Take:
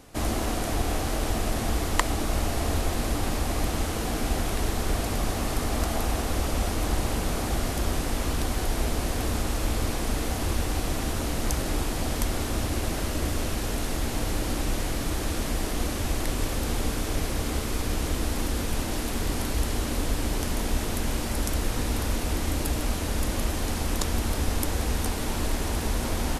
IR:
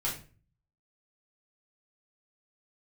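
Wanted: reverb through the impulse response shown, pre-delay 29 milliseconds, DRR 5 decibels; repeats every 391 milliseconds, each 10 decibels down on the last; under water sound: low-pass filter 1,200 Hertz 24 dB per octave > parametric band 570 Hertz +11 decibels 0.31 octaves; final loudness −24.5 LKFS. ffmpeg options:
-filter_complex "[0:a]aecho=1:1:391|782|1173|1564:0.316|0.101|0.0324|0.0104,asplit=2[link_01][link_02];[1:a]atrim=start_sample=2205,adelay=29[link_03];[link_02][link_03]afir=irnorm=-1:irlink=0,volume=-10.5dB[link_04];[link_01][link_04]amix=inputs=2:normalize=0,lowpass=frequency=1200:width=0.5412,lowpass=frequency=1200:width=1.3066,equalizer=frequency=570:width_type=o:width=0.31:gain=11,volume=2.5dB"

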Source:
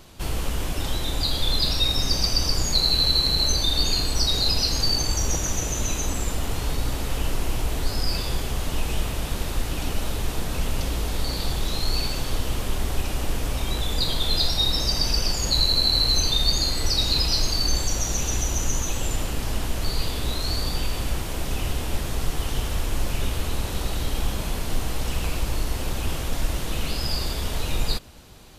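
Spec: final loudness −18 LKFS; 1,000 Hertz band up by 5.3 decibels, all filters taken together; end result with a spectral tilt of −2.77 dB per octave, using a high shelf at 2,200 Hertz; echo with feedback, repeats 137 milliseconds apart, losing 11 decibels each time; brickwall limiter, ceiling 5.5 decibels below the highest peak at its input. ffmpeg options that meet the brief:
ffmpeg -i in.wav -af "equalizer=frequency=1000:width_type=o:gain=5.5,highshelf=frequency=2200:gain=6,alimiter=limit=-9.5dB:level=0:latency=1,aecho=1:1:137|274|411:0.282|0.0789|0.0221,volume=3.5dB" out.wav

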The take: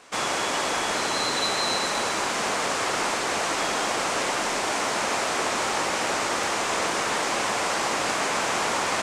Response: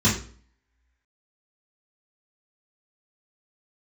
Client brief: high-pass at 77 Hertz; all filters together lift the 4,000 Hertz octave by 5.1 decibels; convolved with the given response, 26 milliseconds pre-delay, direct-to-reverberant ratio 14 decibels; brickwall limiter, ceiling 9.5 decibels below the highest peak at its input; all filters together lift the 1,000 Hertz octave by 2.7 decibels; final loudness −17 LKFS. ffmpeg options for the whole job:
-filter_complex "[0:a]highpass=77,equalizer=frequency=1000:width_type=o:gain=3,equalizer=frequency=4000:width_type=o:gain=6,alimiter=limit=-18.5dB:level=0:latency=1,asplit=2[link_01][link_02];[1:a]atrim=start_sample=2205,adelay=26[link_03];[link_02][link_03]afir=irnorm=-1:irlink=0,volume=-30dB[link_04];[link_01][link_04]amix=inputs=2:normalize=0,volume=9dB"

